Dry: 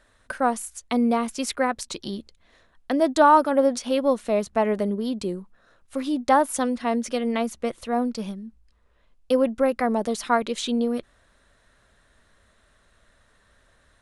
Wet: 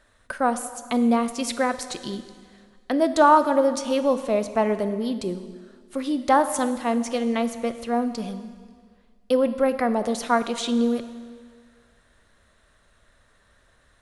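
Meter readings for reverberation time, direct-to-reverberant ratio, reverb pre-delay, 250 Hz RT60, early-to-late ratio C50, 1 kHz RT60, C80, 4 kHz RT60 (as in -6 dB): 1.8 s, 10.5 dB, 8 ms, 1.7 s, 12.0 dB, 1.8 s, 13.0 dB, 1.7 s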